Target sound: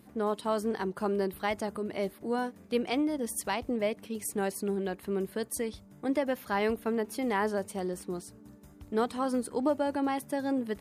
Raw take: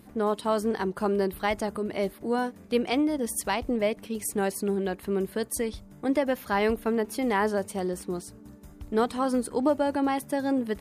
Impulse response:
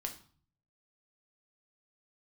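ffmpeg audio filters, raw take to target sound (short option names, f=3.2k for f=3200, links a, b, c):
-af "highpass=69,volume=-4dB"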